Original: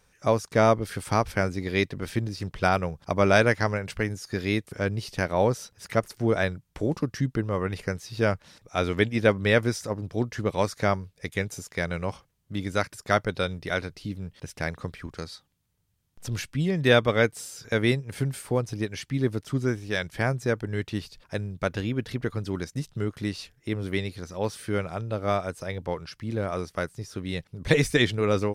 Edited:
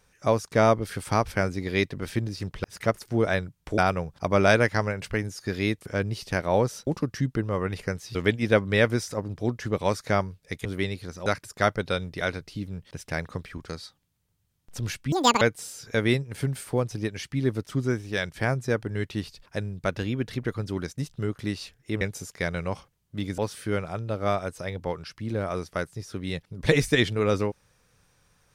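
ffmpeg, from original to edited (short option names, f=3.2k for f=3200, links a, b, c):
-filter_complex "[0:a]asplit=11[a][b][c][d][e][f][g][h][i][j][k];[a]atrim=end=2.642[l];[b]atrim=start=5.728:end=6.872[m];[c]atrim=start=2.638:end=5.732[n];[d]atrim=start=6.868:end=8.152[o];[e]atrim=start=8.878:end=11.382[p];[f]atrim=start=23.788:end=24.402[q];[g]atrim=start=12.748:end=16.614[r];[h]atrim=start=16.61:end=17.19,asetpts=PTS-STARTPTS,asetrate=87759,aresample=44100,atrim=end_sample=12853,asetpts=PTS-STARTPTS[s];[i]atrim=start=17.186:end=23.792[t];[j]atrim=start=11.378:end=12.752[u];[k]atrim=start=24.398[v];[l][m]acrossfade=d=0.004:c1=hsin:c2=hsin[w];[w][n]acrossfade=d=0.004:c1=hsin:c2=hsin[x];[x][o]acrossfade=d=0.004:c1=hsin:c2=hsin[y];[y][p]acrossfade=d=0.004:c1=hsin:c2=hsin[z];[z][q]acrossfade=d=0.004:c1=hsin:c2=hsin[aa];[aa][r]acrossfade=d=0.004:c1=hsin:c2=hsin[ab];[ab][s]acrossfade=d=0.004:c1=hsin:c2=hsin[ac];[ac][t]acrossfade=d=0.004:c1=hsin:c2=hsin[ad];[ad][u]acrossfade=d=0.004:c1=hsin:c2=hsin[ae];[ae][v]acrossfade=d=0.004:c1=hsin:c2=hsin"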